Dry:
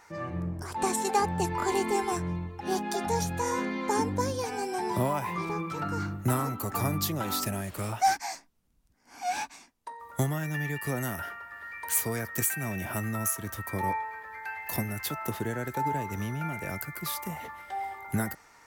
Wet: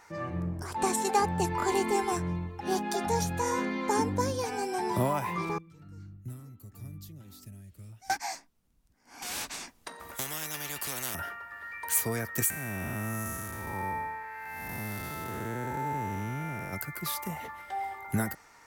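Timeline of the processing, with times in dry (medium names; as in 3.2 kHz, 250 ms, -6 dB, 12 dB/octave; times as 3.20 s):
5.58–8.10 s: amplifier tone stack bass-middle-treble 10-0-1
9.22–11.15 s: spectrum-flattening compressor 4:1
12.50–16.73 s: spectral blur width 337 ms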